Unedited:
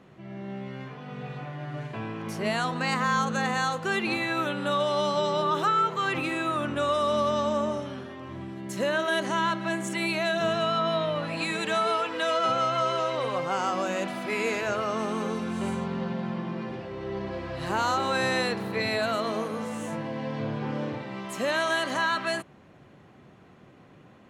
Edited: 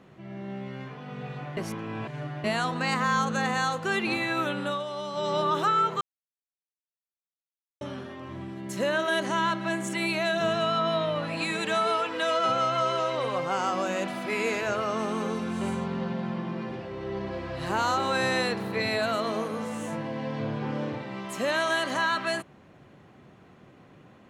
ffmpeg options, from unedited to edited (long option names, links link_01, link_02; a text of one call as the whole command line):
ffmpeg -i in.wav -filter_complex "[0:a]asplit=7[link_01][link_02][link_03][link_04][link_05][link_06][link_07];[link_01]atrim=end=1.572[link_08];[link_02]atrim=start=1.568:end=2.442,asetpts=PTS-STARTPTS,areverse[link_09];[link_03]atrim=start=2.438:end=4.83,asetpts=PTS-STARTPTS,afade=type=out:start_time=2.152:duration=0.24:silence=0.375837[link_10];[link_04]atrim=start=4.83:end=5.11,asetpts=PTS-STARTPTS,volume=-8.5dB[link_11];[link_05]atrim=start=5.11:end=6.01,asetpts=PTS-STARTPTS,afade=type=in:duration=0.24:silence=0.375837,afade=type=out:start_time=0.896:duration=0.004:curve=hsin[link_12];[link_06]atrim=start=6.01:end=7.81,asetpts=PTS-STARTPTS,volume=0[link_13];[link_07]atrim=start=7.81,asetpts=PTS-STARTPTS,afade=type=in:duration=0.004:curve=hsin[link_14];[link_08][link_09]acrossfade=duration=0.004:curve1=hsin:curve2=hsin[link_15];[link_10][link_11][link_12][link_13][link_14]concat=n=5:v=0:a=1[link_16];[link_15][link_16]acrossfade=duration=0.004:curve1=hsin:curve2=hsin" out.wav